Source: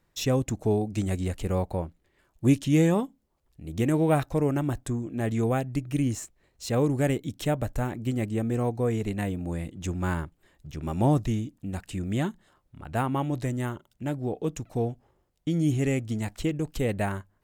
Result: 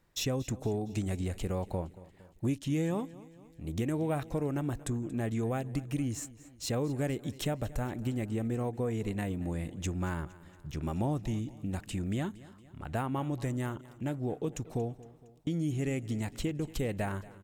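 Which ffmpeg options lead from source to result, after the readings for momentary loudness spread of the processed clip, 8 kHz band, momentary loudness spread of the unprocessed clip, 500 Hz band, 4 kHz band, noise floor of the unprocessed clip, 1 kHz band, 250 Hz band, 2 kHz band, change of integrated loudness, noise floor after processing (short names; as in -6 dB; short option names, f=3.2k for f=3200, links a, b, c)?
8 LU, -3.0 dB, 10 LU, -7.0 dB, -2.5 dB, -71 dBFS, -7.0 dB, -6.5 dB, -6.0 dB, -6.5 dB, -56 dBFS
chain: -filter_complex "[0:a]acompressor=threshold=-31dB:ratio=3,asplit=2[a][b];[b]aecho=0:1:231|462|693|924:0.112|0.0595|0.0315|0.0167[c];[a][c]amix=inputs=2:normalize=0"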